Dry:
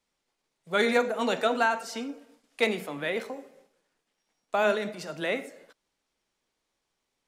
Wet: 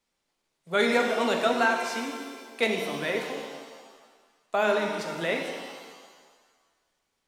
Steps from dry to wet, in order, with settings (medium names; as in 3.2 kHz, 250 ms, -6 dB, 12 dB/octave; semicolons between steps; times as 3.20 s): pitch-shifted reverb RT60 1.6 s, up +7 st, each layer -8 dB, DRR 3.5 dB